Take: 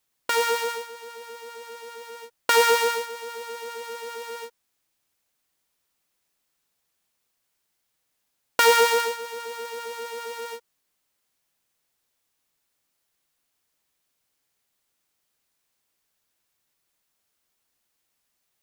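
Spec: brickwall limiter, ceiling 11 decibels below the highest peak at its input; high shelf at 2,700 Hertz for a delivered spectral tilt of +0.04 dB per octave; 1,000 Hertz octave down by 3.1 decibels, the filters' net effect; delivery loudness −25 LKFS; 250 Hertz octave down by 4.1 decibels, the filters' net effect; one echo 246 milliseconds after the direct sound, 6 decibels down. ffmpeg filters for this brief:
ffmpeg -i in.wav -af "equalizer=frequency=250:width_type=o:gain=-5,equalizer=frequency=1000:width_type=o:gain=-5.5,highshelf=frequency=2700:gain=8.5,alimiter=limit=-8dB:level=0:latency=1,aecho=1:1:246:0.501,volume=2dB" out.wav

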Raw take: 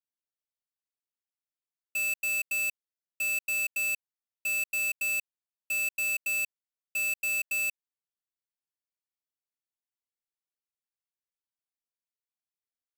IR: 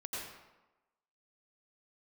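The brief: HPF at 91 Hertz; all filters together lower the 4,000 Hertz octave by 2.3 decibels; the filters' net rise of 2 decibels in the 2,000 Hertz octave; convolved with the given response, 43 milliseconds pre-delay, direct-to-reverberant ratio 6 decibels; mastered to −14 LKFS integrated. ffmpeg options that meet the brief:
-filter_complex "[0:a]highpass=91,equalizer=frequency=2000:width_type=o:gain=6,equalizer=frequency=4000:width_type=o:gain=-4,asplit=2[link_01][link_02];[1:a]atrim=start_sample=2205,adelay=43[link_03];[link_02][link_03]afir=irnorm=-1:irlink=0,volume=-7dB[link_04];[link_01][link_04]amix=inputs=2:normalize=0,volume=11.5dB"

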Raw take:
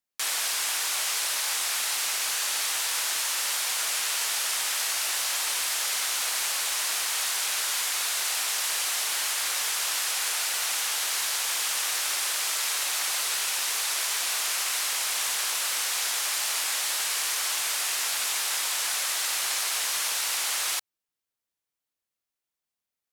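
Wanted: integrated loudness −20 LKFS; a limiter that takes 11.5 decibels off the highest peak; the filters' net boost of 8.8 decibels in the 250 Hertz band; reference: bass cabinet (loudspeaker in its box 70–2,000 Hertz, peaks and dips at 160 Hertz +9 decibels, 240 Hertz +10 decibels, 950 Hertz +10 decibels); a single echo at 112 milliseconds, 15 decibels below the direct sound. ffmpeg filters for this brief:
ffmpeg -i in.wav -af "equalizer=frequency=250:width_type=o:gain=5,alimiter=level_in=2dB:limit=-24dB:level=0:latency=1,volume=-2dB,highpass=frequency=70:width=0.5412,highpass=frequency=70:width=1.3066,equalizer=frequency=160:width_type=q:width=4:gain=9,equalizer=frequency=240:width_type=q:width=4:gain=10,equalizer=frequency=950:width_type=q:width=4:gain=10,lowpass=frequency=2000:width=0.5412,lowpass=frequency=2000:width=1.3066,aecho=1:1:112:0.178,volume=21dB" out.wav

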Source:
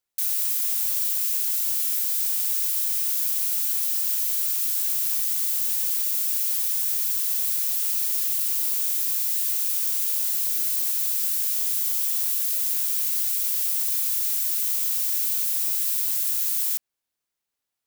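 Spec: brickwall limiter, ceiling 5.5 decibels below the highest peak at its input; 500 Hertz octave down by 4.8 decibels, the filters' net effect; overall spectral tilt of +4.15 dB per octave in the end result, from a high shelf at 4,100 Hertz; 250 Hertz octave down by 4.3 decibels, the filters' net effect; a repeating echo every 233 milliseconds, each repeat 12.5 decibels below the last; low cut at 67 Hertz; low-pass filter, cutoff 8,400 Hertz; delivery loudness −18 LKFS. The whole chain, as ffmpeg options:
ffmpeg -i in.wav -af "highpass=67,lowpass=8400,equalizer=frequency=250:width_type=o:gain=-3.5,equalizer=frequency=500:width_type=o:gain=-5.5,highshelf=frequency=4100:gain=-5,alimiter=level_in=7dB:limit=-24dB:level=0:latency=1,volume=-7dB,aecho=1:1:233|466|699:0.237|0.0569|0.0137,volume=20dB" out.wav

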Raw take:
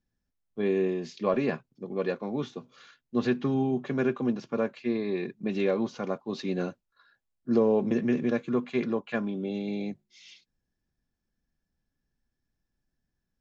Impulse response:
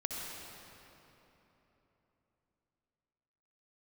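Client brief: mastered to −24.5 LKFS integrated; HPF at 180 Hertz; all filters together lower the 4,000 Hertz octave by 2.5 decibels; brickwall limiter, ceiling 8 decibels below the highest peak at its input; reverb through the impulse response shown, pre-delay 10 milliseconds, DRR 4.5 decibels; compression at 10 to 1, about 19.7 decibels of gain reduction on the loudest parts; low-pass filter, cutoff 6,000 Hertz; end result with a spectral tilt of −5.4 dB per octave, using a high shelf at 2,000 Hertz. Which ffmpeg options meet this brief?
-filter_complex "[0:a]highpass=180,lowpass=6000,highshelf=frequency=2000:gain=5.5,equalizer=frequency=4000:width_type=o:gain=-7.5,acompressor=threshold=-40dB:ratio=10,alimiter=level_in=12.5dB:limit=-24dB:level=0:latency=1,volume=-12.5dB,asplit=2[link_01][link_02];[1:a]atrim=start_sample=2205,adelay=10[link_03];[link_02][link_03]afir=irnorm=-1:irlink=0,volume=-7dB[link_04];[link_01][link_04]amix=inputs=2:normalize=0,volume=21.5dB"

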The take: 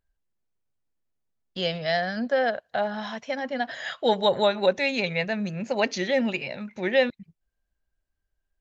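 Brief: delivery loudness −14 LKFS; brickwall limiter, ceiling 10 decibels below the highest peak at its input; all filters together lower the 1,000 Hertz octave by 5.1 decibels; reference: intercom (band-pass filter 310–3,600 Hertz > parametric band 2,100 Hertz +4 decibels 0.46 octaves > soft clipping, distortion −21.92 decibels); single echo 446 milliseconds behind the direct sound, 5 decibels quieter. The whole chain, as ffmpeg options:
ffmpeg -i in.wav -af "equalizer=frequency=1000:width_type=o:gain=-7.5,alimiter=limit=-21dB:level=0:latency=1,highpass=310,lowpass=3600,equalizer=frequency=2100:width_type=o:width=0.46:gain=4,aecho=1:1:446:0.562,asoftclip=threshold=-20.5dB,volume=18dB" out.wav

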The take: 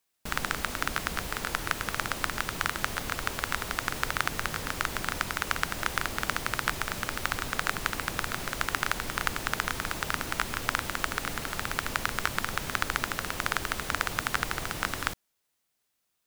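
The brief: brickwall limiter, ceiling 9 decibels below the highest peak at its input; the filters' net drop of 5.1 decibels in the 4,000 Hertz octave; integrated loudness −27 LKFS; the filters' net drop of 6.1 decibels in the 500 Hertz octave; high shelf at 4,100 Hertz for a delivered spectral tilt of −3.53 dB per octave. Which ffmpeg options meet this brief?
ffmpeg -i in.wav -af "equalizer=frequency=500:width_type=o:gain=-8,equalizer=frequency=4000:width_type=o:gain=-3.5,highshelf=frequency=4100:gain=-5.5,volume=10dB,alimiter=limit=-8dB:level=0:latency=1" out.wav

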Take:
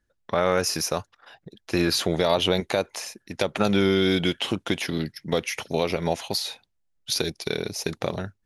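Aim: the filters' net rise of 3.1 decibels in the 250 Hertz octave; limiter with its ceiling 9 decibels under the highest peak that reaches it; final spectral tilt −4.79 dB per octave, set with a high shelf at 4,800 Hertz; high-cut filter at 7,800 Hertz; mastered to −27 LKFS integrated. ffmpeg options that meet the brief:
ffmpeg -i in.wav -af "lowpass=7800,equalizer=frequency=250:width_type=o:gain=4.5,highshelf=frequency=4800:gain=-6.5,volume=2dB,alimiter=limit=-13.5dB:level=0:latency=1" out.wav

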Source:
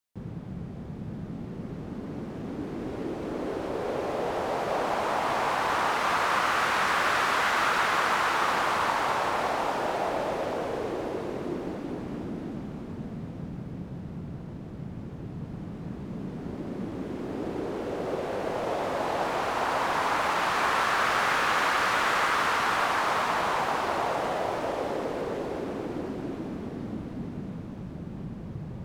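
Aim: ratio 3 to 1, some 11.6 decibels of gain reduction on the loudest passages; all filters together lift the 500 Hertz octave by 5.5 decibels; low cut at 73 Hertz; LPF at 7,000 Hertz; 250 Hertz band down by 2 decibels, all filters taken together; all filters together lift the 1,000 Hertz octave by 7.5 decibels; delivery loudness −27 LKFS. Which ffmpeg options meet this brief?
ffmpeg -i in.wav -af "highpass=73,lowpass=7000,equalizer=frequency=250:width_type=o:gain=-5.5,equalizer=frequency=500:width_type=o:gain=5.5,equalizer=frequency=1000:width_type=o:gain=8,acompressor=threshold=-32dB:ratio=3,volume=6.5dB" out.wav

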